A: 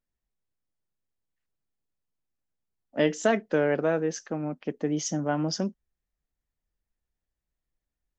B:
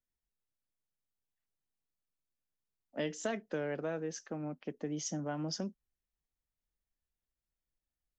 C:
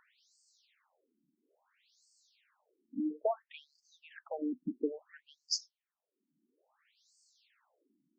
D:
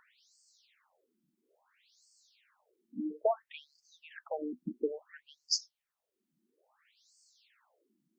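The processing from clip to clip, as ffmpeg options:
-filter_complex "[0:a]acrossover=split=130|3000[s0][s1][s2];[s1]acompressor=threshold=0.0316:ratio=2[s3];[s0][s3][s2]amix=inputs=3:normalize=0,volume=0.447"
-af "acompressor=mode=upward:threshold=0.00501:ratio=2.5,asoftclip=type=tanh:threshold=0.0473,afftfilt=real='re*between(b*sr/1024,240*pow(6200/240,0.5+0.5*sin(2*PI*0.59*pts/sr))/1.41,240*pow(6200/240,0.5+0.5*sin(2*PI*0.59*pts/sr))*1.41)':imag='im*between(b*sr/1024,240*pow(6200/240,0.5+0.5*sin(2*PI*0.59*pts/sr))/1.41,240*pow(6200/240,0.5+0.5*sin(2*PI*0.59*pts/sr))*1.41)':win_size=1024:overlap=0.75,volume=2.51"
-af "equalizer=f=280:w=6.9:g=-13,volume=1.41"

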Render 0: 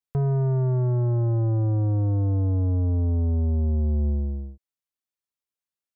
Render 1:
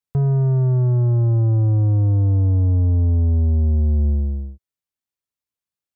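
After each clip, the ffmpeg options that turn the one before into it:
-af "equalizer=f=96:t=o:w=2.2:g=6.5"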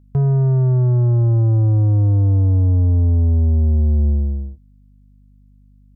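-af "aeval=exprs='val(0)+0.00316*(sin(2*PI*50*n/s)+sin(2*PI*2*50*n/s)/2+sin(2*PI*3*50*n/s)/3+sin(2*PI*4*50*n/s)/4+sin(2*PI*5*50*n/s)/5)':c=same,volume=1.26"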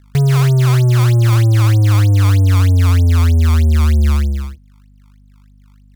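-af "acrusher=samples=22:mix=1:aa=0.000001:lfo=1:lforange=35.2:lforate=3.2,volume=1.5"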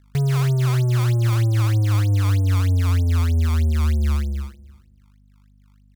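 -af "aecho=1:1:310|620:0.1|0.016,volume=0.422"

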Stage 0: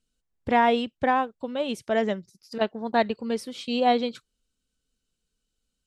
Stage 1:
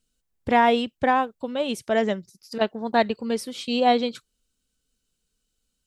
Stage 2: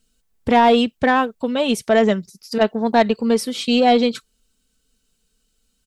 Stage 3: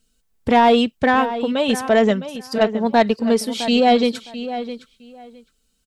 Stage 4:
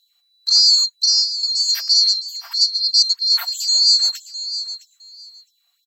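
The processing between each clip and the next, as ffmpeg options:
-af "highshelf=f=7000:g=6.5,volume=1.26"
-filter_complex "[0:a]aecho=1:1:4.5:0.37,asplit=2[s0][s1];[s1]alimiter=limit=0.15:level=0:latency=1:release=74,volume=0.841[s2];[s0][s2]amix=inputs=2:normalize=0,asoftclip=type=tanh:threshold=0.422,volume=1.33"
-filter_complex "[0:a]asplit=2[s0][s1];[s1]adelay=661,lowpass=f=4000:p=1,volume=0.251,asplit=2[s2][s3];[s3]adelay=661,lowpass=f=4000:p=1,volume=0.18[s4];[s0][s2][s4]amix=inputs=3:normalize=0"
-af "afftfilt=real='real(if(lt(b,736),b+184*(1-2*mod(floor(b/184),2)),b),0)':imag='imag(if(lt(b,736),b+184*(1-2*mod(floor(b/184),2)),b),0)':win_size=2048:overlap=0.75,aeval=exprs='val(0)+0.0224*(sin(2*PI*50*n/s)+sin(2*PI*2*50*n/s)/2+sin(2*PI*3*50*n/s)/3+sin(2*PI*4*50*n/s)/4+sin(2*PI*5*50*n/s)/5)':c=same,afftfilt=real='re*gte(b*sr/1024,560*pow(3200/560,0.5+0.5*sin(2*PI*3.1*pts/sr)))':imag='im*gte(b*sr/1024,560*pow(3200/560,0.5+0.5*sin(2*PI*3.1*pts/sr)))':win_size=1024:overlap=0.75"

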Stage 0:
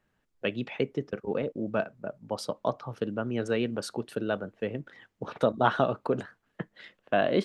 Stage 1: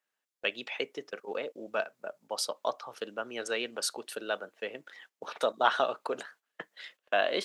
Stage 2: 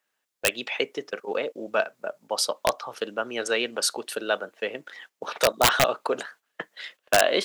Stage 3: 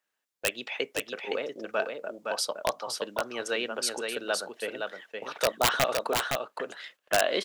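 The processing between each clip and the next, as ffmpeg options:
-af "highpass=530,agate=range=0.316:threshold=0.00141:ratio=16:detection=peak,highshelf=f=3000:g=11.5,volume=0.841"
-af "aeval=exprs='(mod(7.08*val(0)+1,2)-1)/7.08':c=same,volume=2.37"
-af "aecho=1:1:515:0.596,volume=0.562"

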